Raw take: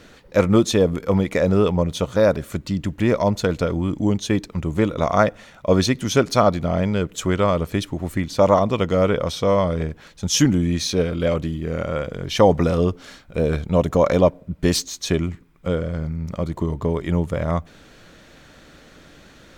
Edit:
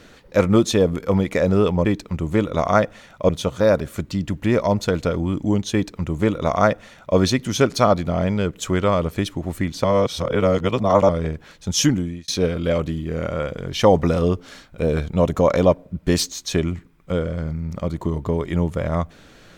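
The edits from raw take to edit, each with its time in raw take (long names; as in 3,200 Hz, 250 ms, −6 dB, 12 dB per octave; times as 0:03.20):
0:04.29–0:05.73: duplicate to 0:01.85
0:08.40–0:09.65: reverse
0:10.38–0:10.84: fade out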